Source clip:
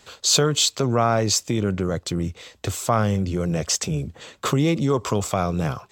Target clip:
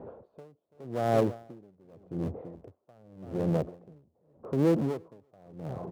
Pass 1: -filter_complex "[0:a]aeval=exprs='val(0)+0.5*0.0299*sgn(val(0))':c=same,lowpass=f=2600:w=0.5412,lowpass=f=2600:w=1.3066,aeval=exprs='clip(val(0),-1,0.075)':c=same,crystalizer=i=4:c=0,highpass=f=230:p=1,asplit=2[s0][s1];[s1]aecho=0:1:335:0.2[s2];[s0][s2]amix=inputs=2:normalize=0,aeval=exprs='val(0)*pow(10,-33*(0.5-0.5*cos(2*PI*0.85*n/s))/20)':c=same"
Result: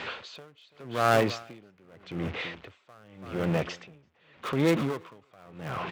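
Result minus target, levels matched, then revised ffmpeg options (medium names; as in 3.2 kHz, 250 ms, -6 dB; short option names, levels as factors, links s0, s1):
2 kHz band +13.5 dB
-filter_complex "[0:a]aeval=exprs='val(0)+0.5*0.0299*sgn(val(0))':c=same,lowpass=f=660:w=0.5412,lowpass=f=660:w=1.3066,aeval=exprs='clip(val(0),-1,0.075)':c=same,crystalizer=i=4:c=0,highpass=f=230:p=1,asplit=2[s0][s1];[s1]aecho=0:1:335:0.2[s2];[s0][s2]amix=inputs=2:normalize=0,aeval=exprs='val(0)*pow(10,-33*(0.5-0.5*cos(2*PI*0.85*n/s))/20)':c=same"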